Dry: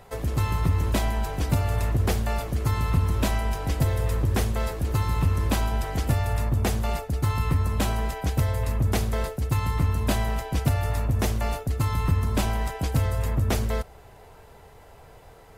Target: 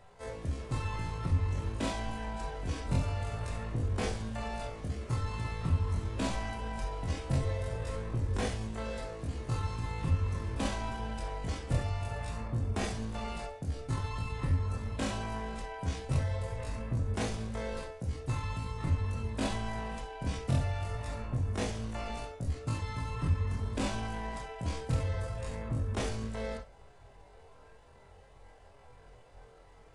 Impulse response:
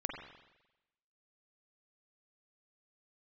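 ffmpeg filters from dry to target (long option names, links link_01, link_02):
-filter_complex "[0:a]atempo=0.52[link_01];[1:a]atrim=start_sample=2205,atrim=end_sample=6174,asetrate=83790,aresample=44100[link_02];[link_01][link_02]afir=irnorm=-1:irlink=0,aresample=22050,aresample=44100,volume=-3dB"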